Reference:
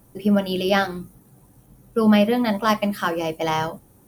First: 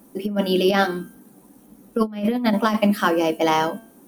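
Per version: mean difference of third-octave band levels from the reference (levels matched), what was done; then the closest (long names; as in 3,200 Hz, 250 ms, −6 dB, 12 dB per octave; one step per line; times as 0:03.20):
5.0 dB: low shelf with overshoot 160 Hz −13 dB, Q 3
hum removal 225.2 Hz, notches 14
compressor whose output falls as the input rises −18 dBFS, ratio −0.5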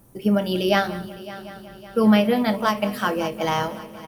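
3.5 dB: double-tracking delay 27 ms −14 dB
on a send: echo machine with several playback heads 186 ms, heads first and third, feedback 65%, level −18.5 dB
on the sum: every ending faded ahead of time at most 160 dB per second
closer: second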